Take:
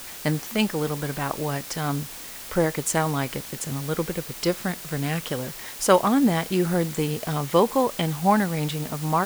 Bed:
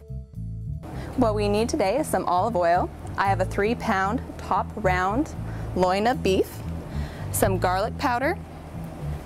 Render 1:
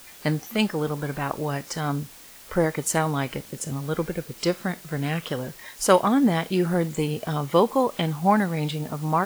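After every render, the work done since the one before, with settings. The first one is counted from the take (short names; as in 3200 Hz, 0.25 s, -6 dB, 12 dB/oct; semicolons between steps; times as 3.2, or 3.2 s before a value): noise print and reduce 8 dB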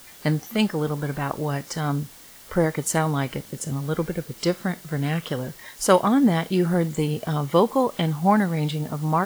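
bell 130 Hz +3 dB 2 oct; notch 2500 Hz, Q 15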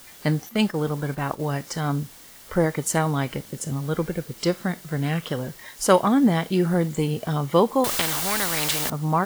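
0.49–1.51 gate -33 dBFS, range -7 dB; 7.84–8.9 spectral compressor 4:1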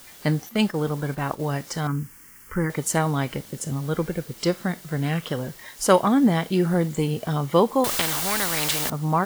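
1.87–2.7 fixed phaser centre 1600 Hz, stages 4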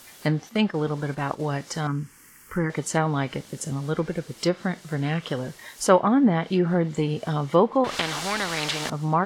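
treble ducked by the level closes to 2300 Hz, closed at -15.5 dBFS; low shelf 77 Hz -7 dB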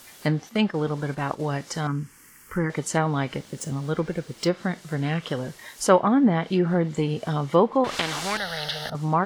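3.38–4.54 median filter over 3 samples; 8.37–8.95 fixed phaser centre 1600 Hz, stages 8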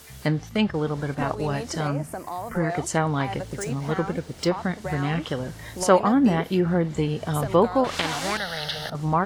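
add bed -10.5 dB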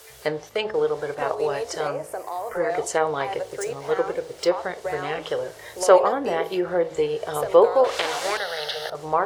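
resonant low shelf 320 Hz -11.5 dB, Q 3; de-hum 53.87 Hz, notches 21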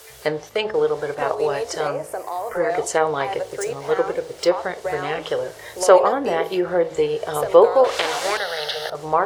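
gain +3 dB; limiter -1 dBFS, peak gain reduction 1.5 dB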